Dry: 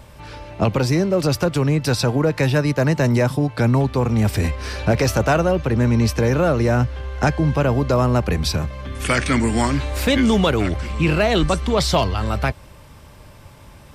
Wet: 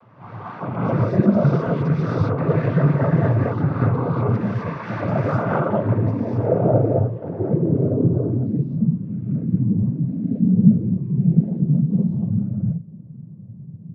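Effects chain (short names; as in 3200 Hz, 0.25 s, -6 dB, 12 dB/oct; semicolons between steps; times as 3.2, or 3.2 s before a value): Chebyshev low-pass 5700 Hz, order 2; bell 880 Hz -8 dB 2.2 oct; limiter -20 dBFS, peak gain reduction 9 dB; non-linear reverb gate 0.28 s rising, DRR -8 dB; noise vocoder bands 16; low-pass sweep 1200 Hz -> 190 Hz, 5.67–9.18; gain -1 dB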